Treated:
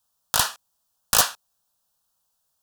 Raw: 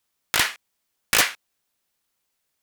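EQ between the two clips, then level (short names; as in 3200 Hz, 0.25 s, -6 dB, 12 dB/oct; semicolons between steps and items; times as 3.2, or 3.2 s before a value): bell 420 Hz +6.5 dB 0.29 oct; fixed phaser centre 890 Hz, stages 4; +3.5 dB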